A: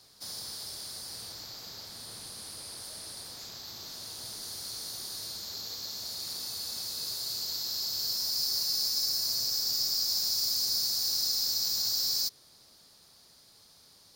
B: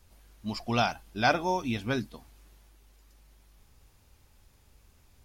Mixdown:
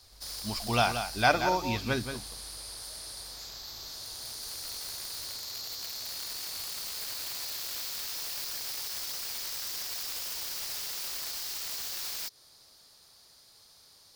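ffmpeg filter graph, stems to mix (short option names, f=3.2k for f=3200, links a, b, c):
-filter_complex "[0:a]acompressor=threshold=-32dB:ratio=12,aeval=exprs='(mod(37.6*val(0)+1,2)-1)/37.6':c=same,volume=0.5dB[a];[1:a]agate=range=-33dB:threshold=-53dB:ratio=3:detection=peak,equalizer=f=85:w=0.43:g=3,volume=1.5dB,asplit=2[b][c];[c]volume=-8.5dB,aecho=0:1:178:1[d];[a][b][d]amix=inputs=3:normalize=0,equalizer=f=200:w=0.79:g=-7"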